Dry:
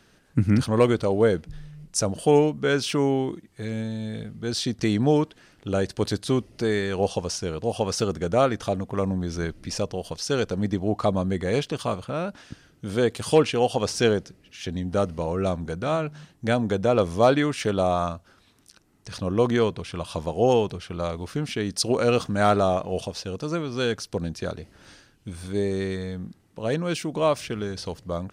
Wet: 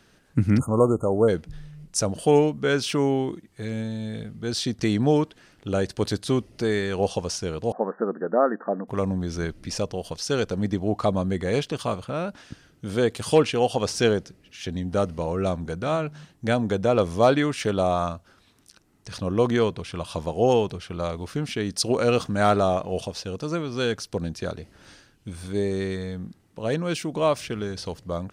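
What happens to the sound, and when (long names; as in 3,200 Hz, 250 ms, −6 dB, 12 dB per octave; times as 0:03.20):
0:00.59–0:01.28: time-frequency box erased 1,400–6,400 Hz
0:07.72–0:08.88: linear-phase brick-wall band-pass 180–1,900 Hz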